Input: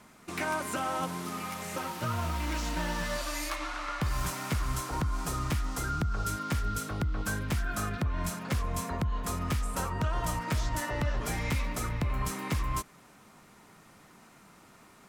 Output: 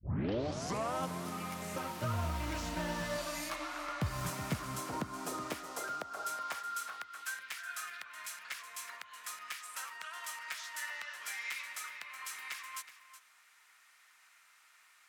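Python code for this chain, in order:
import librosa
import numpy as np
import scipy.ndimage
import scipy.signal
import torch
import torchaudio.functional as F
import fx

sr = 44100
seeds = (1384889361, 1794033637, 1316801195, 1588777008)

p1 = fx.tape_start_head(x, sr, length_s=0.96)
p2 = fx.filter_sweep_highpass(p1, sr, from_hz=86.0, to_hz=1800.0, start_s=3.92, end_s=7.28, q=1.4)
p3 = fx.dynamic_eq(p2, sr, hz=620.0, q=5.9, threshold_db=-54.0, ratio=4.0, max_db=5)
p4 = p3 + fx.echo_single(p3, sr, ms=371, db=-13.5, dry=0)
y = F.gain(torch.from_numpy(p4), -5.0).numpy()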